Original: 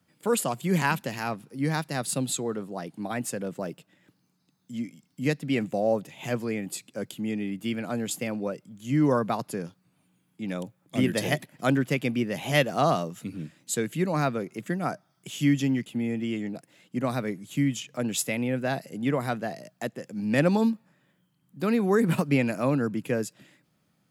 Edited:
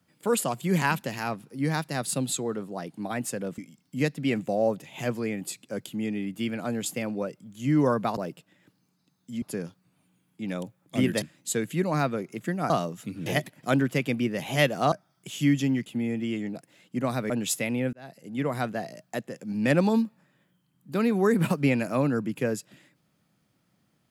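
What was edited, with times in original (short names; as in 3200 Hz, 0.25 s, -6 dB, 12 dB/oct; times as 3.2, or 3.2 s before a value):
3.58–4.83 move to 9.42
11.22–12.88 swap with 13.44–14.92
17.3–17.98 cut
18.61–19.27 fade in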